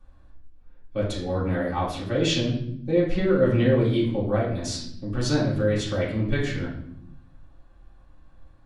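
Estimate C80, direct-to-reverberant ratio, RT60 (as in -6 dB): 8.5 dB, -7.5 dB, 0.75 s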